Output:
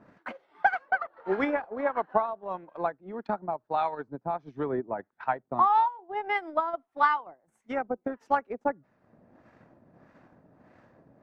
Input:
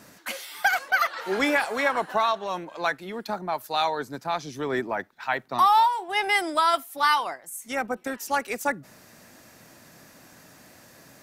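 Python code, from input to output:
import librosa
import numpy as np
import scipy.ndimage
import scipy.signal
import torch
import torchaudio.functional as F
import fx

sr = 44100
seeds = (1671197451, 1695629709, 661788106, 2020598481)

y = fx.transient(x, sr, attack_db=7, sustain_db=-11)
y = fx.filter_lfo_lowpass(y, sr, shape='sine', hz=1.6, low_hz=640.0, high_hz=1600.0, q=0.78)
y = y * librosa.db_to_amplitude(-4.0)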